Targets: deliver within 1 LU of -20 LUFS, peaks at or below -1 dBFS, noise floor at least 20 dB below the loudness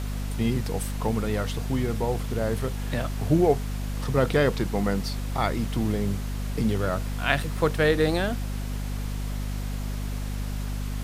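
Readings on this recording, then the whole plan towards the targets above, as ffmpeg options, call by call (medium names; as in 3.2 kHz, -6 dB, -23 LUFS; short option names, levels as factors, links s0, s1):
hum 50 Hz; highest harmonic 250 Hz; hum level -27 dBFS; noise floor -31 dBFS; noise floor target -47 dBFS; loudness -27.0 LUFS; peak level -4.0 dBFS; loudness target -20.0 LUFS
-> -af "bandreject=f=50:t=h:w=6,bandreject=f=100:t=h:w=6,bandreject=f=150:t=h:w=6,bandreject=f=200:t=h:w=6,bandreject=f=250:t=h:w=6"
-af "afftdn=nr=16:nf=-31"
-af "volume=2.24,alimiter=limit=0.891:level=0:latency=1"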